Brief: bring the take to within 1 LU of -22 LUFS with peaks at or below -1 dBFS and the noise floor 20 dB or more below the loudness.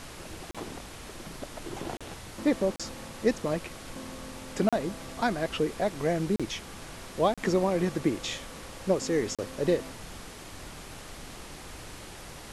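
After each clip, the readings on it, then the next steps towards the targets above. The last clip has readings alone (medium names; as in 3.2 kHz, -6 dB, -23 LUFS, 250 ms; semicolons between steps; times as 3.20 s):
dropouts 7; longest dropout 36 ms; noise floor -45 dBFS; noise floor target -51 dBFS; loudness -30.5 LUFS; peak level -12.0 dBFS; loudness target -22.0 LUFS
-> interpolate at 0.51/1.97/2.76/4.69/6.36/7.34/9.35 s, 36 ms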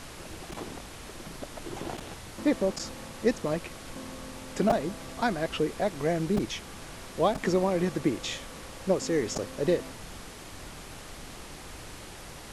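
dropouts 0; noise floor -44 dBFS; noise floor target -51 dBFS
-> noise print and reduce 7 dB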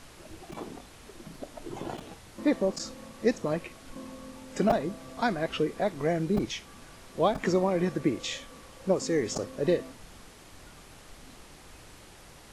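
noise floor -51 dBFS; loudness -30.0 LUFS; peak level -10.0 dBFS; loudness target -22.0 LUFS
-> trim +8 dB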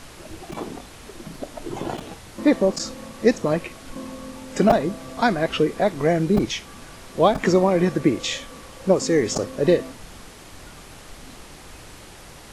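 loudness -22.0 LUFS; peak level -2.0 dBFS; noise floor -43 dBFS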